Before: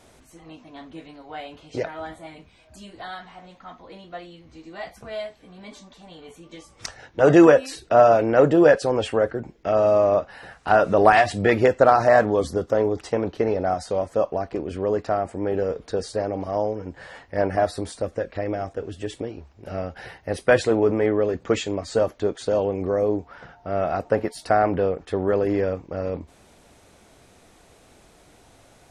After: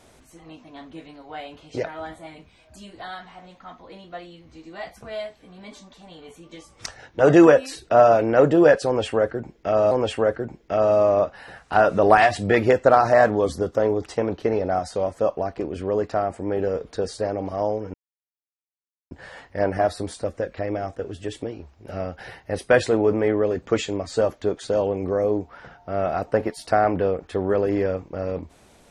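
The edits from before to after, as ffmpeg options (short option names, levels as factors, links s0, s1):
-filter_complex "[0:a]asplit=3[s0][s1][s2];[s0]atrim=end=9.912[s3];[s1]atrim=start=8.858:end=16.89,asetpts=PTS-STARTPTS,afade=t=out:st=8.028:d=0.004:c=hsin,apad=pad_dur=1.17[s4];[s2]atrim=start=16.89,asetpts=PTS-STARTPTS,afade=t=in:d=0.004:c=hsin[s5];[s4][s5]concat=n=2:v=0:a=1[s6];[s3][s6]acrossfade=d=0.004:c1=hsin:c2=hsin"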